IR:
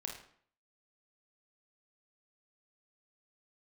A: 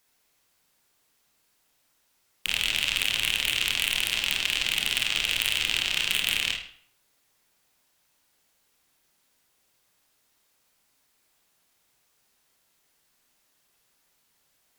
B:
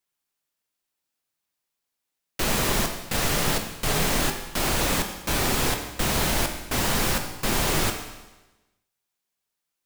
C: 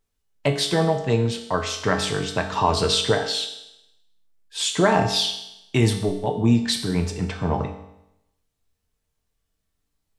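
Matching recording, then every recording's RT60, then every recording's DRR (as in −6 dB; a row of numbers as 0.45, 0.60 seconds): A; 0.55, 1.1, 0.85 seconds; 0.5, 4.5, 4.0 decibels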